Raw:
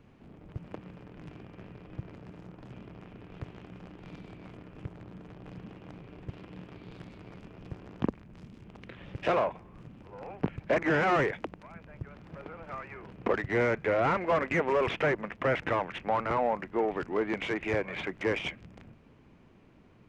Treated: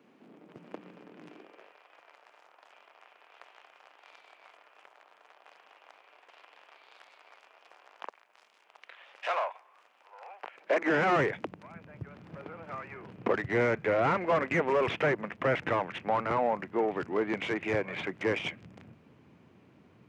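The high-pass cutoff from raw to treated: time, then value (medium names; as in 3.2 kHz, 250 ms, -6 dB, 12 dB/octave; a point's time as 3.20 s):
high-pass 24 dB/octave
1.26 s 220 Hz
1.81 s 700 Hz
10.47 s 700 Hz
10.92 s 200 Hz
11.10 s 89 Hz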